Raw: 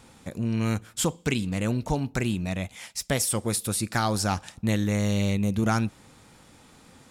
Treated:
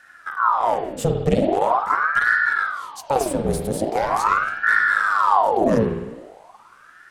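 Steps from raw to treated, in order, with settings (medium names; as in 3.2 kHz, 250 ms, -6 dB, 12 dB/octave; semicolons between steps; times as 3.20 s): octave divider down 2 oct, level 0 dB; valve stage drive 13 dB, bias 0.5; peaking EQ 140 Hz +15 dB 1.8 oct; spring tank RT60 1.2 s, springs 51 ms, chirp 45 ms, DRR 1.5 dB; ring modulator with a swept carrier 950 Hz, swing 70%, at 0.42 Hz; trim -1.5 dB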